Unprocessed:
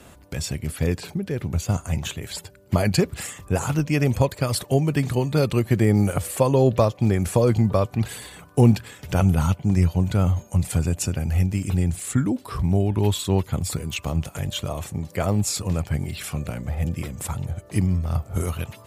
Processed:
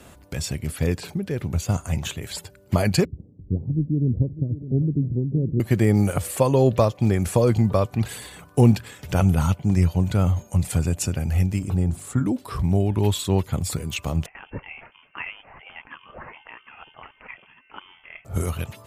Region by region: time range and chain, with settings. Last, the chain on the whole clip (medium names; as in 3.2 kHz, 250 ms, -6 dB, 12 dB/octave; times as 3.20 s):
3.05–5.60 s: inverse Chebyshev low-pass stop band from 1.5 kHz, stop band 70 dB + delay 601 ms -14 dB
11.59–12.26 s: resonant high shelf 1.5 kHz -7 dB, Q 1.5 + hum notches 50/100/150/200/250/300/350 Hz
14.26–18.25 s: high-pass 1.1 kHz + frequency inversion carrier 3.3 kHz
whole clip: none